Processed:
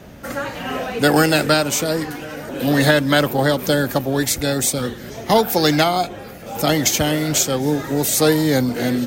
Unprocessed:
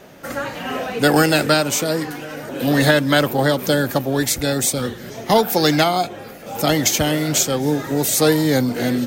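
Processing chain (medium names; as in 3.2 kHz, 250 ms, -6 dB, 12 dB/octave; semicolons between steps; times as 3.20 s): band noise 31–260 Hz -43 dBFS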